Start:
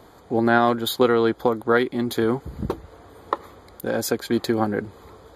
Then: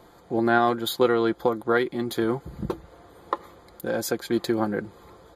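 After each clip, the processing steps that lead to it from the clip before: comb 5.8 ms, depth 37%; trim -3.5 dB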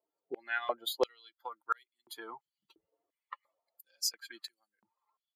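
expander on every frequency bin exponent 2; step-sequenced high-pass 2.9 Hz 420–7700 Hz; trim -5 dB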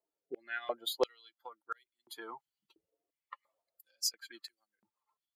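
rotary cabinet horn 0.75 Hz, later 8 Hz, at 3.38 s

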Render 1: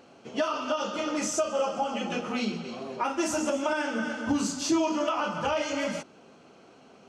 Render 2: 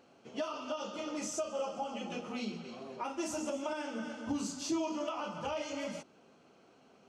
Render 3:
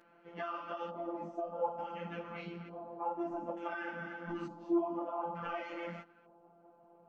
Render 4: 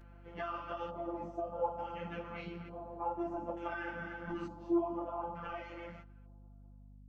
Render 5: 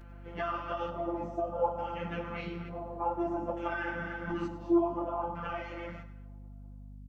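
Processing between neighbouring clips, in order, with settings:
dynamic bell 1.6 kHz, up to -6 dB, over -47 dBFS, Q 2.1; trim -8.5 dB
LFO low-pass square 0.56 Hz 820–1800 Hz; robot voice 171 Hz; three-phase chorus; trim +3 dB
fade out at the end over 2.31 s; hum 50 Hz, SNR 15 dB
feedback delay 100 ms, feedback 32%, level -13.5 dB; two-slope reverb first 0.64 s, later 2.1 s, from -18 dB, DRR 17.5 dB; trim +5.5 dB

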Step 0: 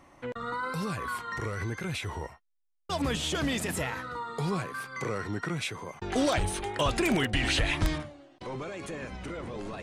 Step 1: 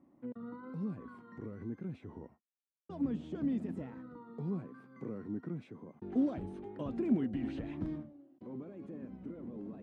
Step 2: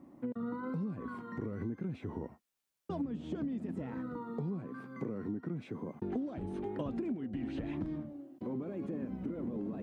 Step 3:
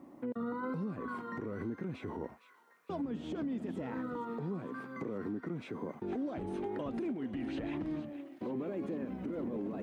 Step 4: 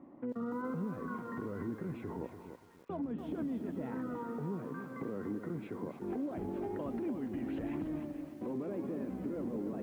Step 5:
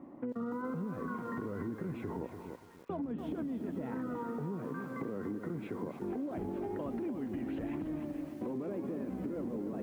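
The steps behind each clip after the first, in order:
band-pass filter 240 Hz, Q 2.9; trim +1 dB
compression 16:1, threshold -43 dBFS, peak gain reduction 20 dB; trim +9.5 dB
tone controls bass -8 dB, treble -1 dB; peak limiter -34.5 dBFS, peak gain reduction 7.5 dB; feedback echo behind a high-pass 463 ms, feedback 67%, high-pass 1.5 kHz, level -12 dB; trim +5 dB
distance through air 470 m; on a send at -22.5 dB: reverberation RT60 1.2 s, pre-delay 40 ms; on the sum: bit-crushed delay 290 ms, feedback 35%, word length 10-bit, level -8.5 dB
compression, threshold -38 dBFS, peak gain reduction 5.5 dB; trim +4 dB

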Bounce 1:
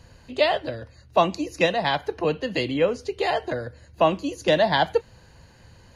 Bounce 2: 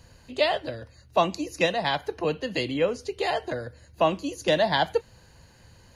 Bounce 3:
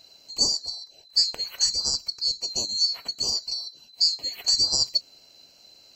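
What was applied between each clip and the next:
treble shelf 6.2 kHz +7.5 dB; trim -3 dB
split-band scrambler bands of 4 kHz

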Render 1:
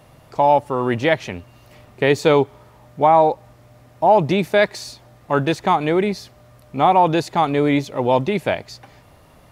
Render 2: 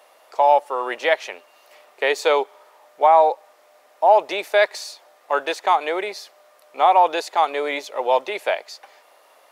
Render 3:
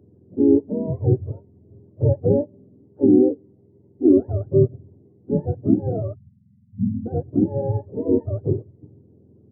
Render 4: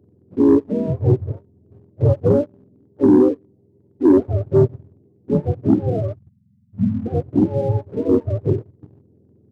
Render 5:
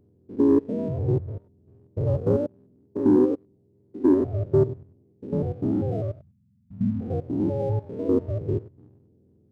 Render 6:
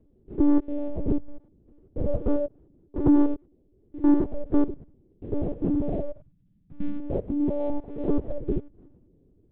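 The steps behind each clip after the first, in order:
high-pass 490 Hz 24 dB/octave
spectrum inverted on a logarithmic axis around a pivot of 490 Hz; spectral selection erased 6.15–7.06 s, 240–1900 Hz
waveshaping leveller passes 1
spectrogram pixelated in time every 100 ms; trim -4.5 dB
monotone LPC vocoder at 8 kHz 290 Hz

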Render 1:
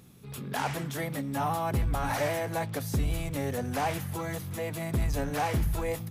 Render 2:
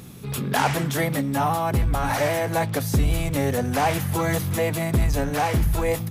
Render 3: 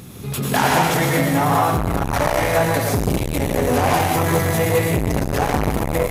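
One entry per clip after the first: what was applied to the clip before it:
gain riding within 5 dB 0.5 s; trim +8 dB
plate-style reverb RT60 1.5 s, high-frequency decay 0.95×, pre-delay 80 ms, DRR -2.5 dB; transformer saturation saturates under 580 Hz; trim +3.5 dB

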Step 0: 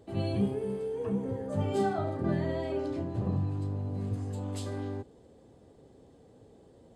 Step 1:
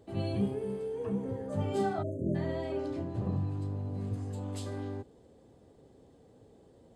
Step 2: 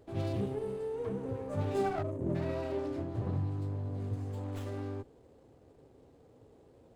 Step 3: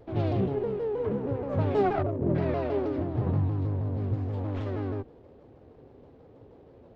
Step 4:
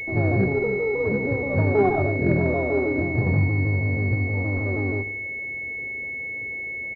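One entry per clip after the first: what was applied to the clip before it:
spectral selection erased 2.03–2.35 s, 650–6100 Hz; trim -2 dB
peaking EQ 200 Hz -7.5 dB 0.39 oct; sliding maximum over 9 samples
Gaussian low-pass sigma 2.1 samples; vibrato with a chosen wave saw down 6.3 Hz, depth 160 cents; trim +7 dB
feedback delay 70 ms, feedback 56%, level -14 dB; class-D stage that switches slowly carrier 2.2 kHz; trim +5.5 dB

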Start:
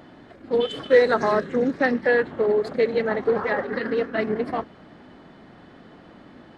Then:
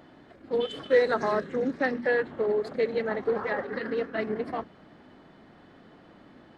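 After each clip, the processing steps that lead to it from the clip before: hum notches 60/120/180/240 Hz; trim -5.5 dB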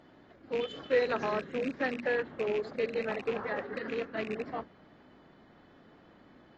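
rattle on loud lows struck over -36 dBFS, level -24 dBFS; trim -5.5 dB; AAC 24 kbps 32 kHz

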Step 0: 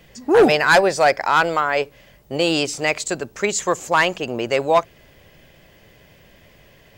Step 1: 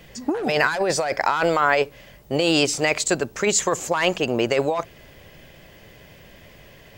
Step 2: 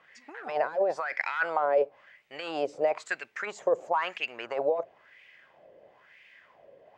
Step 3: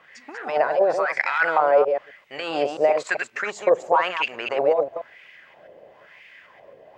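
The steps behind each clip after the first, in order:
compressor with a negative ratio -20 dBFS, ratio -1
wah-wah 1 Hz 520–2300 Hz, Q 4; trim +1.5 dB
chunks repeated in reverse 132 ms, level -6 dB; trim +7 dB

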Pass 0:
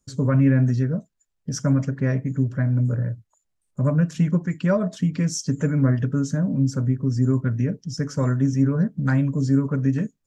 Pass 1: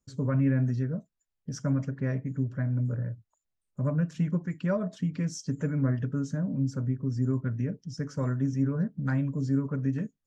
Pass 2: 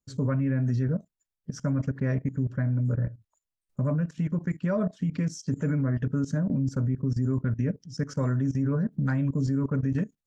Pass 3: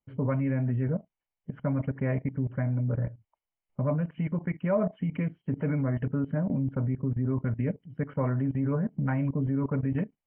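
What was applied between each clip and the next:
treble shelf 7.2 kHz -9.5 dB; trim -7.5 dB
level held to a coarse grid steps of 16 dB; trim +7 dB
rippled Chebyshev low-pass 3.1 kHz, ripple 9 dB; trim +6.5 dB

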